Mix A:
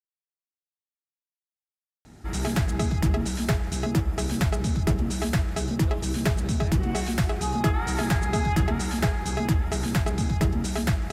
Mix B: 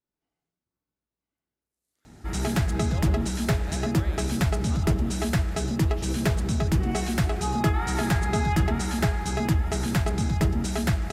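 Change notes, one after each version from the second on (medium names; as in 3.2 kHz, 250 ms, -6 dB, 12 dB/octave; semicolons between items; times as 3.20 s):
speech: entry -2.95 s; reverb: on, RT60 0.70 s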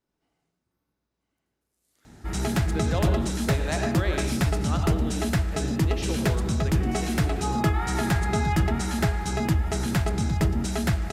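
speech +10.5 dB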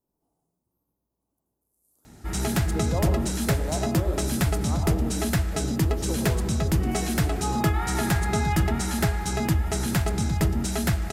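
speech: add FFT filter 1 kHz 0 dB, 2 kHz -27 dB, 12 kHz +9 dB; background: add treble shelf 9.4 kHz +10.5 dB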